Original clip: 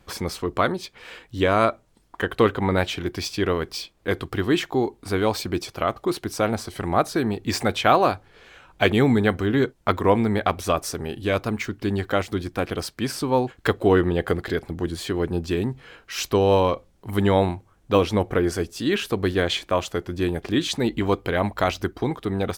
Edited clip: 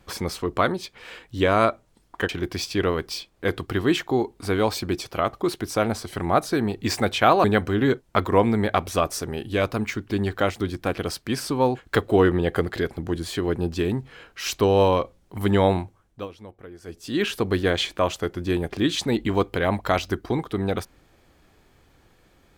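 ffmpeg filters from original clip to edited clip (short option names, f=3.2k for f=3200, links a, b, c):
-filter_complex "[0:a]asplit=5[a][b][c][d][e];[a]atrim=end=2.292[f];[b]atrim=start=2.918:end=8.072[g];[c]atrim=start=9.158:end=18,asetpts=PTS-STARTPTS,afade=t=out:st=8.392:d=0.45:silence=0.0891251[h];[d]atrim=start=18:end=18.53,asetpts=PTS-STARTPTS,volume=-21dB[i];[e]atrim=start=18.53,asetpts=PTS-STARTPTS,afade=t=in:d=0.45:silence=0.0891251[j];[f][g]acrossfade=d=0.004:c1=hsin:c2=hsin[k];[h][i][j]concat=n=3:v=0:a=1[l];[k][l]acrossfade=d=0.004:c1=hsin:c2=hsin"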